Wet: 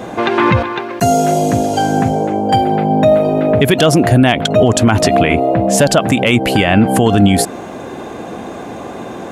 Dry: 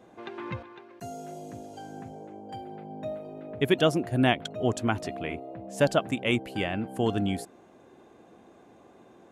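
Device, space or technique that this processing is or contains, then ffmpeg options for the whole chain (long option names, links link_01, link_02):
mastering chain: -af "equalizer=frequency=360:width_type=o:width=0.45:gain=-3.5,acompressor=threshold=-31dB:ratio=2,asoftclip=type=hard:threshold=-20dB,alimiter=level_in=29.5dB:limit=-1dB:release=50:level=0:latency=1,volume=-1dB"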